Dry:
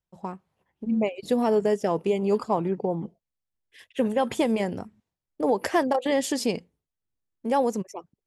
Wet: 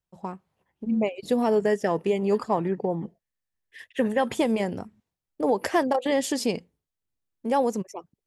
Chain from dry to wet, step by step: 1.64–4.24 bell 1800 Hz +11 dB 0.25 oct

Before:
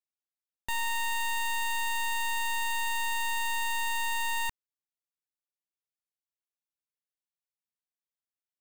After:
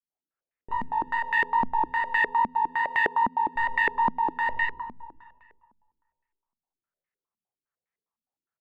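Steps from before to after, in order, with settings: 1.61–3.56 HPF 140 Hz; echo 0.631 s -24 dB; chorus 2.4 Hz, delay 16.5 ms, depth 8 ms; reverb RT60 1.8 s, pre-delay 30 ms, DRR -5 dB; stepped low-pass 9.8 Hz 230–2000 Hz

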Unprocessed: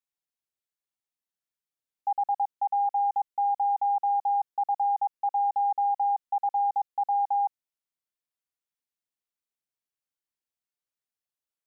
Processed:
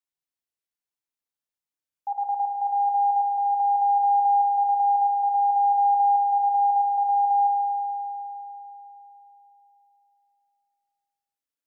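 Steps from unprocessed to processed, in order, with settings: 2.58–3.21 tilt +3 dB/oct; FDN reverb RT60 3.6 s, high-frequency decay 0.8×, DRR 3.5 dB; gain -2.5 dB

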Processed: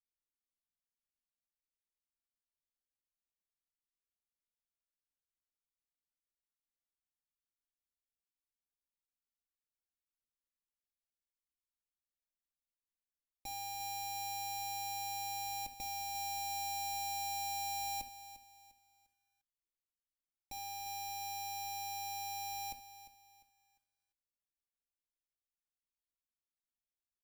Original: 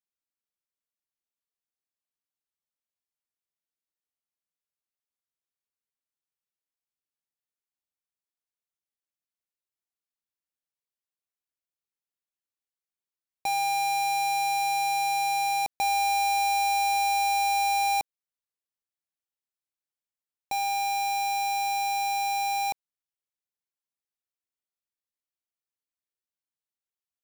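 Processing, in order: passive tone stack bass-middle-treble 10-0-1; comb 3.6 ms, depth 76%; reverb, pre-delay 3 ms, DRR 9 dB; lo-fi delay 0.35 s, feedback 35%, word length 13-bit, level -14.5 dB; gain +8 dB

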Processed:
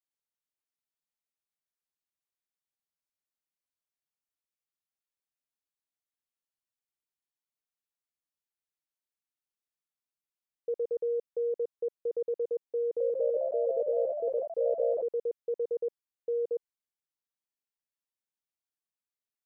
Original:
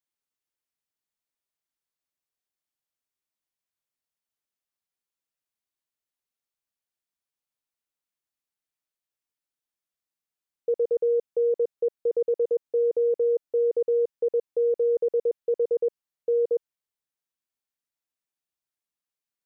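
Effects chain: 12.8–15.06 echoes that change speed 0.203 s, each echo +2 st, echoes 3; gain -7.5 dB

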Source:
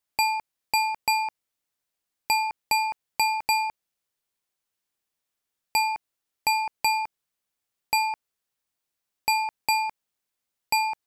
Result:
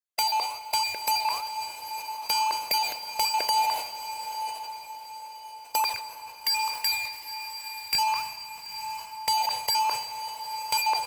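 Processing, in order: random spectral dropouts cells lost 27%; HPF 160 Hz 24 dB/oct, from 5.84 s 1300 Hz, from 7.95 s 190 Hz; comb 1.9 ms, depth 68%; compressor 3:1, threshold -37 dBFS, peak gain reduction 13 dB; sample leveller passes 5; flange 1.2 Hz, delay 0.8 ms, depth 8.2 ms, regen -90%; diffused feedback echo 0.899 s, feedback 42%, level -10 dB; reverb RT60 5.3 s, pre-delay 40 ms, DRR 8.5 dB; sustainer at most 72 dB/s; gain +2 dB

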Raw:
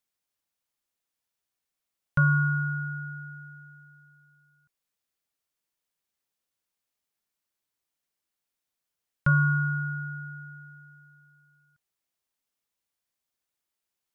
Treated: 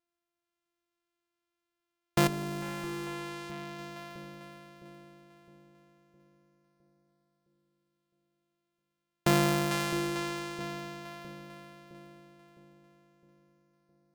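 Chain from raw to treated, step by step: sample sorter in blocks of 128 samples; split-band echo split 540 Hz, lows 0.661 s, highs 0.447 s, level -8 dB; 2.27–3.79 tube stage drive 30 dB, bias 0.5; gain -3.5 dB

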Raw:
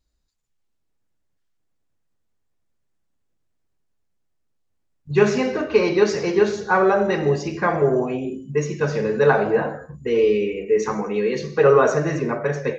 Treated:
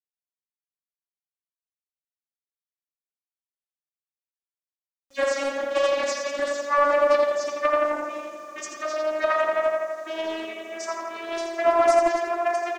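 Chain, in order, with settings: vocoder on a gliding note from A#3, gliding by +7 st; HPF 1100 Hz 6 dB/oct; comb 1.7 ms, depth 83%; swung echo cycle 1.005 s, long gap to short 3:1, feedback 44%, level -22 dB; bit-crush 10-bit; bell 6300 Hz +12 dB 0.63 oct; darkening echo 84 ms, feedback 73%, low-pass 3800 Hz, level -3 dB; Doppler distortion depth 0.25 ms

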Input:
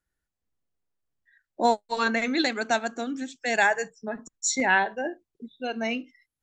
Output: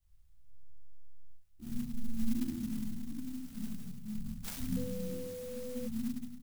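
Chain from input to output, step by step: inverse Chebyshev band-stop 470–4100 Hz, stop band 70 dB; doubler 28 ms -14 dB; flutter echo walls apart 12 m, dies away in 0.68 s; shoebox room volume 460 m³, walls mixed, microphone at 3.2 m; 4.76–5.86 whine 500 Hz -50 dBFS; clock jitter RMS 0.091 ms; gain +10 dB

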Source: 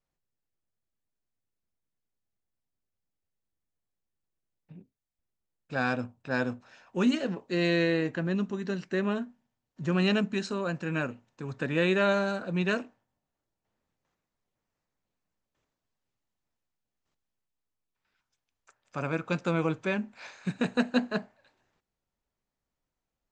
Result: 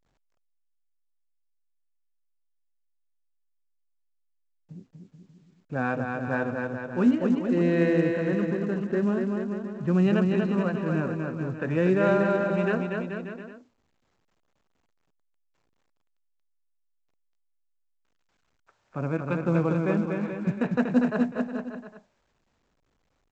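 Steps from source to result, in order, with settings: bell 5700 Hz -5.5 dB 2.9 oct; harmonic tremolo 2.1 Hz, depth 50%, crossover 460 Hz; air absorption 490 m; bouncing-ball echo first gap 0.24 s, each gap 0.8×, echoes 5; gain +6 dB; A-law 128 kbps 16000 Hz

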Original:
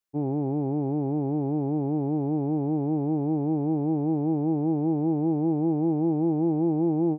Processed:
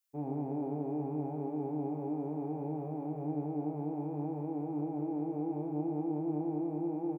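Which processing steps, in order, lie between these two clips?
limiter -21.5 dBFS, peak gain reduction 6 dB; tilt +2.5 dB/oct; outdoor echo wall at 20 m, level -7 dB; flange 0.66 Hz, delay 3.4 ms, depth 8.4 ms, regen -51%; on a send: flutter echo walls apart 4.6 m, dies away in 0.2 s

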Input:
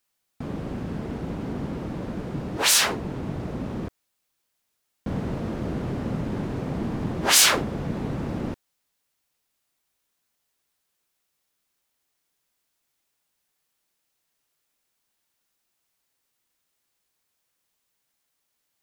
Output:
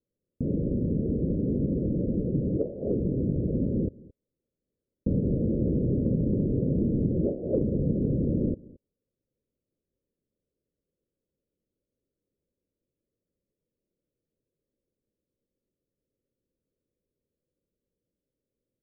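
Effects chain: steep low-pass 560 Hz 72 dB/oct; compressor 3:1, threshold -27 dBFS, peak gain reduction 4 dB; echo 0.221 s -22.5 dB; gain +5.5 dB

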